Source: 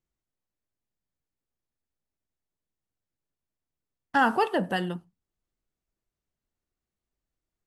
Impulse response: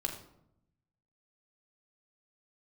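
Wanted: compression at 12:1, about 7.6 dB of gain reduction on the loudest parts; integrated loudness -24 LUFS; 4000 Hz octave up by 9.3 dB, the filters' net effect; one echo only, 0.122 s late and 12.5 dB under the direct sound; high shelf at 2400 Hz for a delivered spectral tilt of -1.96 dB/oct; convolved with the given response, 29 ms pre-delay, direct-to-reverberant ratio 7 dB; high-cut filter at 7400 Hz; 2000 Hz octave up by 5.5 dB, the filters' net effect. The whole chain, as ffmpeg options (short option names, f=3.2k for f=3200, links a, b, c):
-filter_complex "[0:a]lowpass=7.4k,equalizer=f=2k:t=o:g=4,highshelf=f=2.4k:g=5,equalizer=f=4k:t=o:g=7.5,acompressor=threshold=-22dB:ratio=12,aecho=1:1:122:0.237,asplit=2[a][b];[1:a]atrim=start_sample=2205,adelay=29[c];[b][c]afir=irnorm=-1:irlink=0,volume=-9dB[d];[a][d]amix=inputs=2:normalize=0,volume=4dB"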